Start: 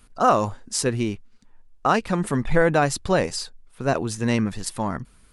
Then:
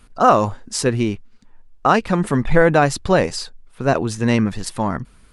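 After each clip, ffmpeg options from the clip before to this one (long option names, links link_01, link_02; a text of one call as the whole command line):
ffmpeg -i in.wav -af "highshelf=frequency=6800:gain=-7.5,volume=5dB" out.wav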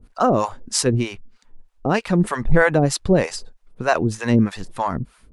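ffmpeg -i in.wav -filter_complex "[0:a]acrossover=split=550[link_01][link_02];[link_01]aeval=exprs='val(0)*(1-1/2+1/2*cos(2*PI*3.2*n/s))':channel_layout=same[link_03];[link_02]aeval=exprs='val(0)*(1-1/2-1/2*cos(2*PI*3.2*n/s))':channel_layout=same[link_04];[link_03][link_04]amix=inputs=2:normalize=0,volume=3.5dB" out.wav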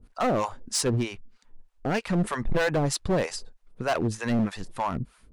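ffmpeg -i in.wav -af "asoftclip=type=hard:threshold=-15.5dB,volume=-4.5dB" out.wav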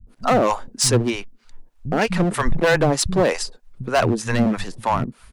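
ffmpeg -i in.wav -filter_complex "[0:a]acrossover=split=180[link_01][link_02];[link_02]adelay=70[link_03];[link_01][link_03]amix=inputs=2:normalize=0,volume=8dB" out.wav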